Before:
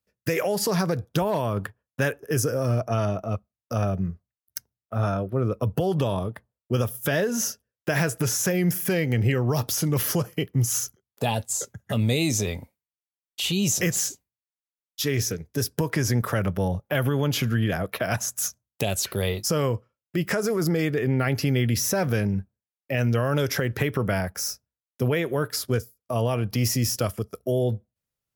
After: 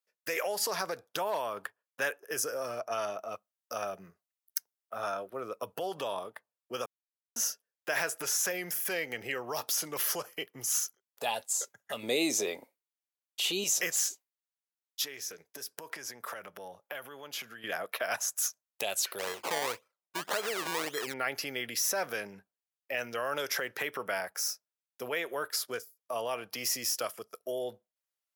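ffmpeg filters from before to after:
-filter_complex "[0:a]asettb=1/sr,asplit=3[s0][s1][s2];[s0]atrim=end=2.914[s3];[s1]atrim=start=2.91:end=5.75,asetpts=PTS-STARTPTS,afade=t=in:d=0.004:c=qsin,afade=t=out:st=2.836:d=0.004:c=qsin,highshelf=f=5300:g=5.5[s4];[s2]atrim=start=5.746[s5];[s3][s4]acrossfade=d=0.004:c1=hsin:c2=qsin[s6];[s6][s5]acrossfade=d=0.004:c1=qsin:c2=hsin,asettb=1/sr,asplit=3[s7][s8][s9];[s7]atrim=end=12.034[s10];[s8]atrim=start=12.03:end=13.64,asetpts=PTS-STARTPTS,afade=t=in:d=0.004:c=qsin,afade=t=out:st=1.606:d=0.004:c=qsin,equalizer=f=340:w=0.94:g=11.5[s11];[s9]atrim=start=13.636[s12];[s10][s11]acrossfade=d=0.004:c1=hsin:c2=qsin[s13];[s13][s12]acrossfade=d=0.004:c1=qsin:c2=hsin,asettb=1/sr,asplit=3[s14][s15][s16];[s14]atrim=end=15.044[s17];[s15]atrim=start=15.04:end=17.64,asetpts=PTS-STARTPTS,afade=t=in:d=0.004:c=qsin,afade=t=out:st=2.596:d=0.004:c=qsin,acompressor=threshold=0.0316:ratio=4:attack=3.2:release=140:knee=1:detection=peak[s18];[s16]atrim=start=17.636[s19];[s17][s18]acrossfade=d=0.004:c1=hsin:c2=qsin[s20];[s20][s19]acrossfade=d=0.004:c1=qsin:c2=hsin,asplit=3[s21][s22][s23];[s21]afade=t=out:st=19.18:d=0.02[s24];[s22]acrusher=samples=23:mix=1:aa=0.000001:lfo=1:lforange=23:lforate=1.8,afade=t=in:st=19.18:d=0.02,afade=t=out:st=21.12:d=0.02[s25];[s23]afade=t=in:st=21.12:d=0.02[s26];[s24][s25][s26]amix=inputs=3:normalize=0,asplit=3[s27][s28][s29];[s27]atrim=end=6.86,asetpts=PTS-STARTPTS,afade=t=out:st=6.856:d=0.004:c=hsin[s30];[s28]atrim=start=6.86:end=7.36,asetpts=PTS-STARTPTS,volume=0[s31];[s29]atrim=start=7.36,asetpts=PTS-STARTPTS,afade=t=in:d=0.004:c=hsin[s32];[s30][s31][s32]concat=n=3:v=0:a=1,highpass=650,volume=0.668"

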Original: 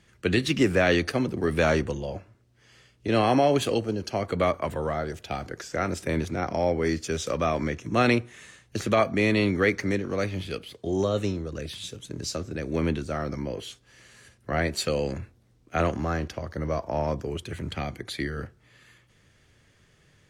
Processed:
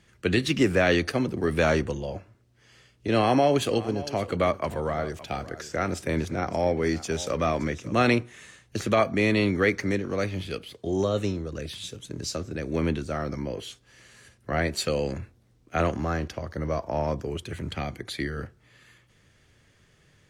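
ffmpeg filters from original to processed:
-filter_complex "[0:a]asettb=1/sr,asplit=3[s0][s1][s2];[s0]atrim=end=3.164[s3];[s1]atrim=start=3.16:end=8.23,asetpts=PTS-STARTPTS,afade=t=in:d=0.004:c=qsin,afade=t=out:st=5.066:d=0.004:c=qsin,aecho=1:1:569:0.15,atrim=end_sample=223587[s4];[s2]atrim=start=8.226[s5];[s3][s4]acrossfade=d=0.004:c1=hsin:c2=qsin[s6];[s6][s5]acrossfade=d=0.004:c1=qsin:c2=hsin"

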